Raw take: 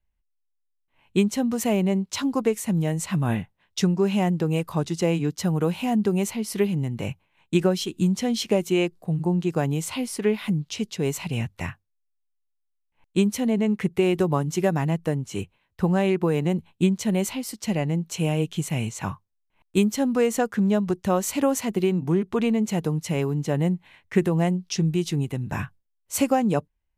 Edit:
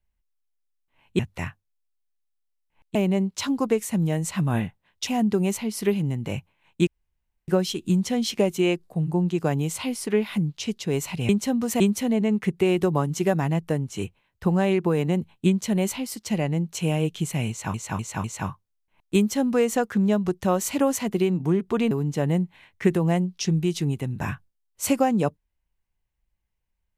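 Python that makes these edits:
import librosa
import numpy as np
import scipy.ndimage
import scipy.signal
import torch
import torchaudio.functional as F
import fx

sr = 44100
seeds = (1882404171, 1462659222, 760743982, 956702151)

y = fx.edit(x, sr, fx.swap(start_s=1.19, length_s=0.51, other_s=11.41, other_length_s=1.76),
    fx.cut(start_s=3.82, length_s=1.98),
    fx.insert_room_tone(at_s=7.6, length_s=0.61),
    fx.repeat(start_s=18.86, length_s=0.25, count=4),
    fx.cut(start_s=22.53, length_s=0.69), tone=tone)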